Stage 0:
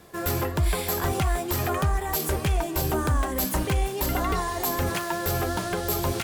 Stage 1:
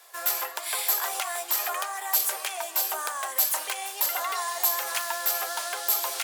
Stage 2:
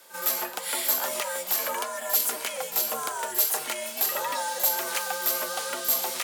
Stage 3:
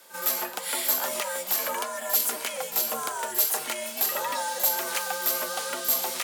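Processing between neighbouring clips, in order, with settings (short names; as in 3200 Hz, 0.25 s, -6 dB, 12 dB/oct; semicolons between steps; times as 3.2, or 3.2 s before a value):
HPF 660 Hz 24 dB/oct; high shelf 3300 Hz +8 dB; gain -2 dB
frequency shift -160 Hz; pre-echo 39 ms -12 dB
bell 220 Hz +3.5 dB 0.45 oct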